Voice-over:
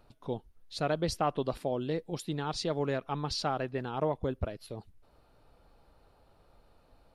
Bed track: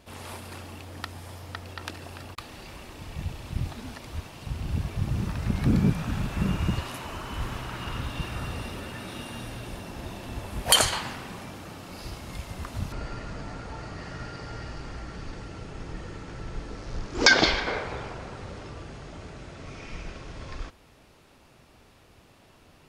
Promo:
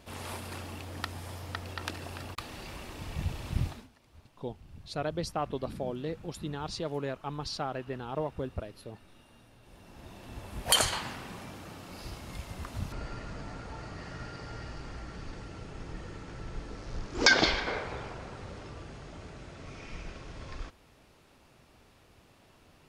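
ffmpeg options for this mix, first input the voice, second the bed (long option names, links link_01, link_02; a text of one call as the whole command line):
ffmpeg -i stem1.wav -i stem2.wav -filter_complex "[0:a]adelay=4150,volume=-3dB[link_01];[1:a]volume=17.5dB,afade=type=out:start_time=3.61:duration=0.27:silence=0.0841395,afade=type=in:start_time=9.6:duration=1.32:silence=0.133352[link_02];[link_01][link_02]amix=inputs=2:normalize=0" out.wav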